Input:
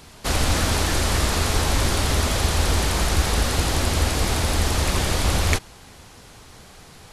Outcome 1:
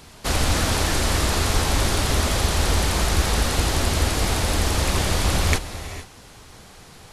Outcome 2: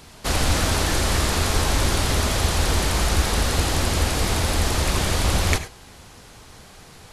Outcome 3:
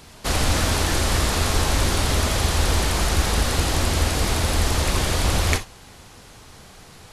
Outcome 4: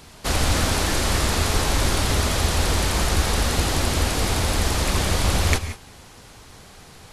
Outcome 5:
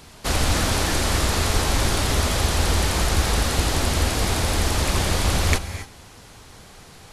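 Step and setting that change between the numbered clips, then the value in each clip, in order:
non-linear reverb, gate: 490, 120, 80, 200, 300 ms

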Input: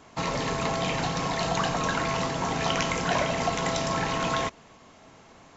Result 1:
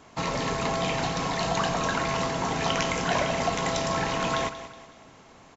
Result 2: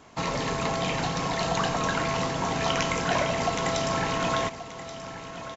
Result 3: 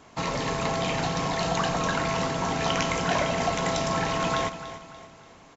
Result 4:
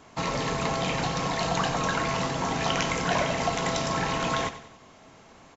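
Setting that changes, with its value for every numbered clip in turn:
feedback echo, time: 185, 1130, 290, 94 ms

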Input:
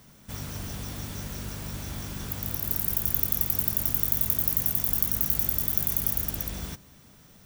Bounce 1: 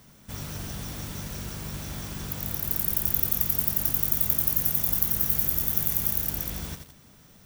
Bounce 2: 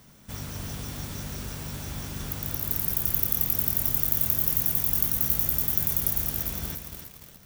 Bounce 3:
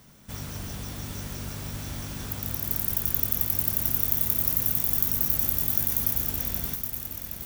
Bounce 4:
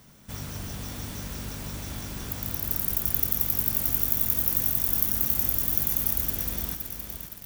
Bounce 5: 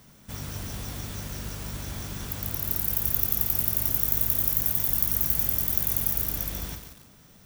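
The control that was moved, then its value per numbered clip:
lo-fi delay, time: 86, 293, 769, 517, 142 ms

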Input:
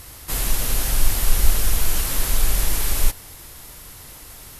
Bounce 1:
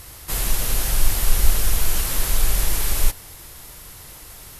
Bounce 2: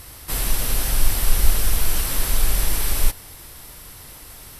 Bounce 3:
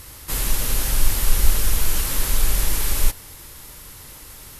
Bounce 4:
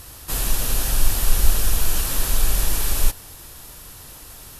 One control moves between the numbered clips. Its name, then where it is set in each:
notch, frequency: 260, 6800, 700, 2100 Hz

